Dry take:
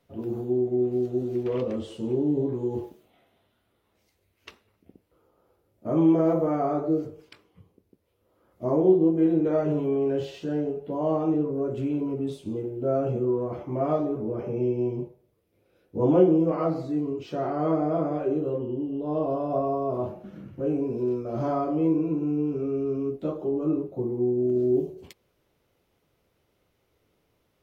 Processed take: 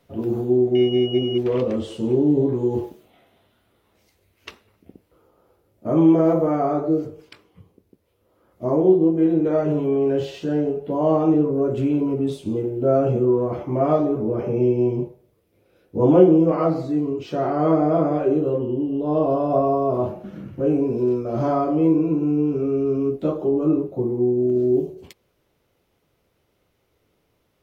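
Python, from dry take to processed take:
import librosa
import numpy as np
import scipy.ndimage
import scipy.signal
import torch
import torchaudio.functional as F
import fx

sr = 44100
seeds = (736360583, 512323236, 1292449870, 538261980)

y = fx.rider(x, sr, range_db=4, speed_s=2.0)
y = fx.pwm(y, sr, carrier_hz=2900.0, at=(0.75, 1.38))
y = y * 10.0 ** (5.0 / 20.0)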